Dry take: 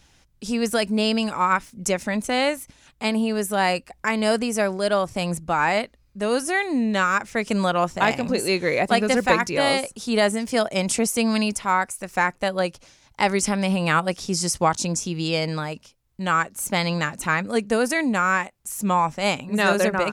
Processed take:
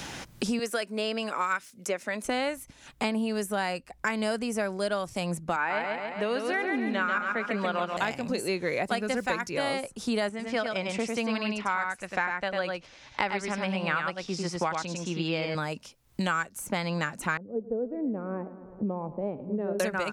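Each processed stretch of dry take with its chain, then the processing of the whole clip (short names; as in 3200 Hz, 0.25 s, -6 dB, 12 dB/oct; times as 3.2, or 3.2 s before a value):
0.59–2.25 HPF 400 Hz + bell 860 Hz -6.5 dB 0.4 oct
5.56–7.97 three-band isolator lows -21 dB, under 190 Hz, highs -22 dB, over 3200 Hz + feedback echo 0.138 s, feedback 46%, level -4 dB
10.29–15.55 LPF 2800 Hz + tilt +2 dB/oct + echo 99 ms -4 dB
17.37–19.8 ladder low-pass 570 Hz, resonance 40% + feedback echo 0.109 s, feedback 56%, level -17.5 dB
whole clip: dynamic EQ 1500 Hz, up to +5 dB, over -37 dBFS, Q 6.9; three-band squash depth 100%; gain -8.5 dB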